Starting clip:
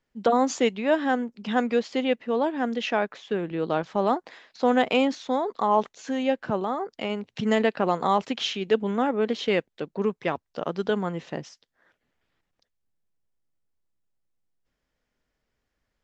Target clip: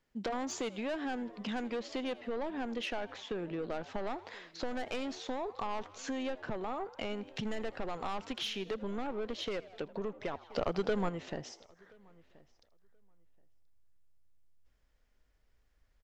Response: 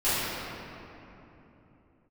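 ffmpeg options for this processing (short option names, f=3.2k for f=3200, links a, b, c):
-filter_complex "[0:a]asoftclip=type=tanh:threshold=-22dB,asplit=2[a][b];[b]asplit=4[c][d][e][f];[c]adelay=81,afreqshift=92,volume=-20.5dB[g];[d]adelay=162,afreqshift=184,volume=-26.9dB[h];[e]adelay=243,afreqshift=276,volume=-33.3dB[i];[f]adelay=324,afreqshift=368,volume=-39.6dB[j];[g][h][i][j]amix=inputs=4:normalize=0[k];[a][k]amix=inputs=2:normalize=0,asubboost=boost=4:cutoff=77,acompressor=threshold=-36dB:ratio=4,asplit=2[l][m];[m]adelay=1028,lowpass=f=3k:p=1,volume=-22dB,asplit=2[n][o];[o]adelay=1028,lowpass=f=3k:p=1,volume=0.18[p];[n][p]amix=inputs=2:normalize=0[q];[l][q]amix=inputs=2:normalize=0,asplit=3[r][s][t];[r]afade=t=out:st=10.5:d=0.02[u];[s]acontrast=55,afade=t=in:st=10.5:d=0.02,afade=t=out:st=11.08:d=0.02[v];[t]afade=t=in:st=11.08:d=0.02[w];[u][v][w]amix=inputs=3:normalize=0"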